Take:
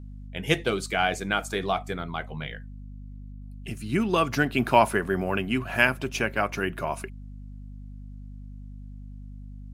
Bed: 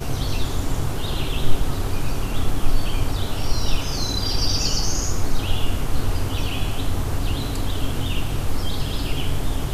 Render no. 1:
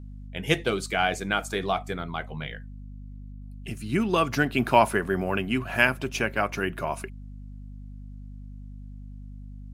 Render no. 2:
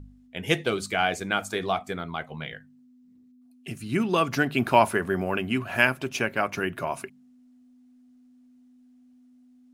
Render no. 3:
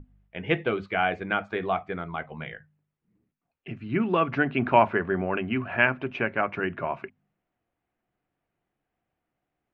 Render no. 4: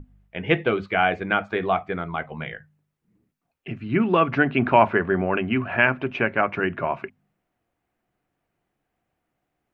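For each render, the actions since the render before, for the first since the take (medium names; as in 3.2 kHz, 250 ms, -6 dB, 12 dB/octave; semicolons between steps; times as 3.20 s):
no audible change
de-hum 50 Hz, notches 4
low-pass 2.6 kHz 24 dB/octave; hum notches 50/100/150/200/250 Hz
trim +4.5 dB; peak limiter -3 dBFS, peak gain reduction 3 dB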